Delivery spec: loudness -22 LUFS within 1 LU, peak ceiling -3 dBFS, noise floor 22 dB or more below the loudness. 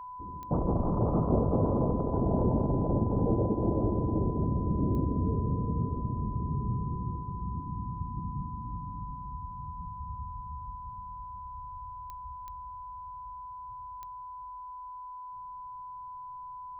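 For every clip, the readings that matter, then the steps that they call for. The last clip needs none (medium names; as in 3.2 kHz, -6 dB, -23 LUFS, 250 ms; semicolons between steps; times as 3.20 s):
clicks found 5; steady tone 1 kHz; tone level -40 dBFS; loudness -32.0 LUFS; peak level -14.0 dBFS; loudness target -22.0 LUFS
-> de-click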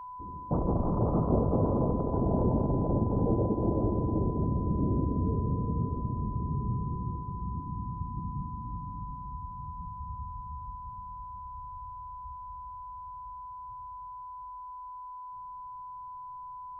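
clicks found 0; steady tone 1 kHz; tone level -40 dBFS
-> band-stop 1 kHz, Q 30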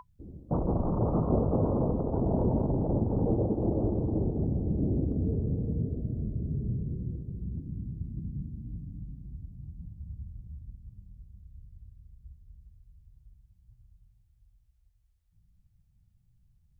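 steady tone not found; loudness -30.5 LUFS; peak level -14.0 dBFS; loudness target -22.0 LUFS
-> trim +8.5 dB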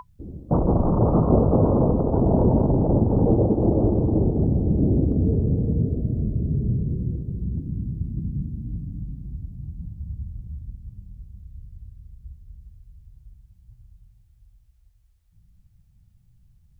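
loudness -22.0 LUFS; peak level -5.5 dBFS; noise floor -59 dBFS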